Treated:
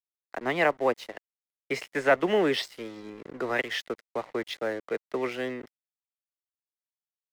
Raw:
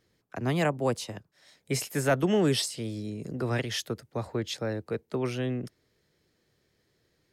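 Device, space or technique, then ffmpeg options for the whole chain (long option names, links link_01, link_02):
pocket radio on a weak battery: -af "highpass=390,lowpass=3100,aeval=exprs='sgn(val(0))*max(abs(val(0))-0.00335,0)':channel_layout=same,equalizer=frequency=2000:width_type=o:width=0.24:gain=7.5,volume=5dB"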